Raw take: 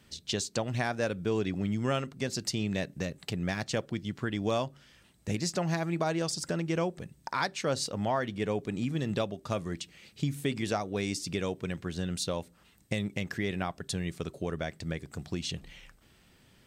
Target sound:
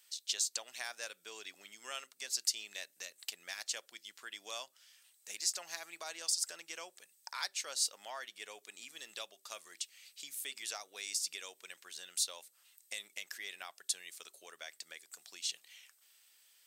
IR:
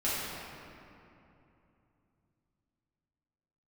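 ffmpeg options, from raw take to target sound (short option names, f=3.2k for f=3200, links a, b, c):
-af "highpass=460,aderivative,volume=3.5dB"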